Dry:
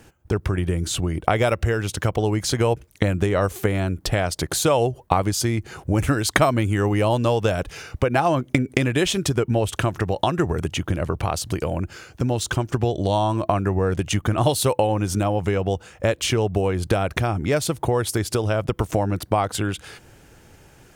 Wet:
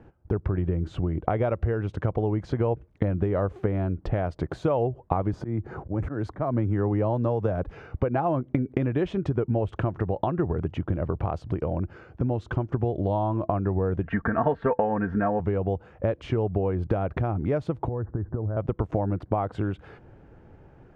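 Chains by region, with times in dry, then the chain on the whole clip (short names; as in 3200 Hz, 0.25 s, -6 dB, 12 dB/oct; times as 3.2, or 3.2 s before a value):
5.33–7.71 bell 2900 Hz -7.5 dB 0.82 oct + auto swell 0.206 s + three-band squash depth 40%
14.03–15.4 synth low-pass 1700 Hz, resonance Q 9.6 + comb 4.4 ms, depth 74%
17.88–18.57 steep low-pass 1800 Hz 96 dB/oct + low shelf 220 Hz +10.5 dB + compressor 10:1, threshold -22 dBFS
whole clip: Bessel low-pass 890 Hz, order 2; compressor 1.5:1, threshold -27 dBFS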